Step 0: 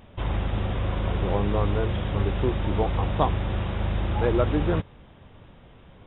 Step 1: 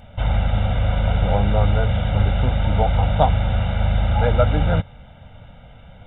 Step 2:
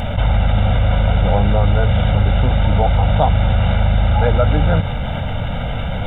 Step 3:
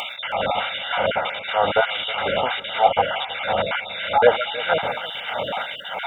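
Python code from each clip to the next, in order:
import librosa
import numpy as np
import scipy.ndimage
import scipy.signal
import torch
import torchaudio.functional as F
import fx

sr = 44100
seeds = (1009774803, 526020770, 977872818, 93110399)

y1 = x + 0.97 * np.pad(x, (int(1.4 * sr / 1000.0), 0))[:len(x)]
y1 = y1 * librosa.db_to_amplitude(2.5)
y2 = fx.env_flatten(y1, sr, amount_pct=70)
y3 = fx.spec_dropout(y2, sr, seeds[0], share_pct=29)
y3 = fx.filter_lfo_highpass(y3, sr, shape='sine', hz=1.6, low_hz=450.0, high_hz=2900.0, q=1.1)
y3 = y3 + 10.0 ** (-17.0 / 20.0) * np.pad(y3, (int(318 * sr / 1000.0), 0))[:len(y3)]
y3 = y3 * librosa.db_to_amplitude(5.0)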